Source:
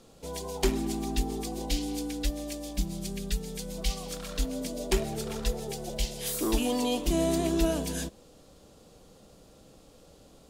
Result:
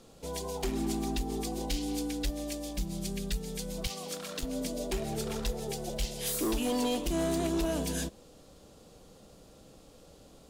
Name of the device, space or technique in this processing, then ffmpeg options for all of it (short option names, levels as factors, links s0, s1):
limiter into clipper: -filter_complex "[0:a]alimiter=limit=0.106:level=0:latency=1:release=163,asoftclip=type=hard:threshold=0.0531,asettb=1/sr,asplit=3[s0][s1][s2];[s0]atrim=end=3.874[s3];[s1]atrim=start=3.87:end=4.43,asetpts=PTS-STARTPTS,afade=t=in:d=0.004:c=qsin,afade=t=out:st=0.556:d=0.004:c=qsin,highpass=200[s4];[s2]atrim=start=4.426[s5];[s3][s4]acrossfade=d=0.004:c1=hsin:c2=qsin[s6];[s6][s5]acrossfade=d=0.004:c1=qsin:c2=hsin"